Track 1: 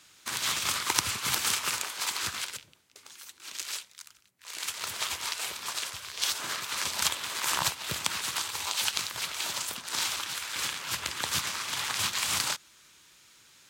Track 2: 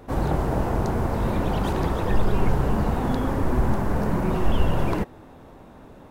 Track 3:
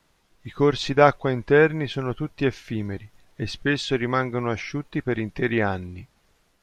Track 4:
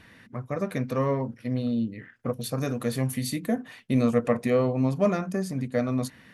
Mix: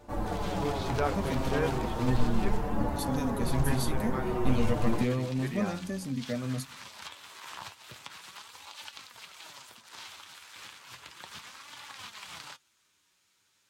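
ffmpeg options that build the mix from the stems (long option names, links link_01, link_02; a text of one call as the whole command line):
ffmpeg -i stem1.wav -i stem2.wav -i stem3.wav -i stem4.wav -filter_complex "[0:a]acrossover=split=4700[link_01][link_02];[link_02]acompressor=threshold=-39dB:ratio=4:attack=1:release=60[link_03];[link_01][link_03]amix=inputs=2:normalize=0,volume=-9.5dB[link_04];[1:a]asplit=2[link_05][link_06];[link_06]adelay=6.3,afreqshift=-0.42[link_07];[link_05][link_07]amix=inputs=2:normalize=1,volume=-1.5dB[link_08];[2:a]volume=-12dB[link_09];[3:a]equalizer=frequency=850:width=0.58:gain=-12,adelay=550,volume=2dB[link_10];[link_04][link_08][link_09][link_10]amix=inputs=4:normalize=0,equalizer=frequency=840:width=1.5:gain=2.5,flanger=delay=3.4:depth=7.3:regen=50:speed=0.34:shape=sinusoidal" out.wav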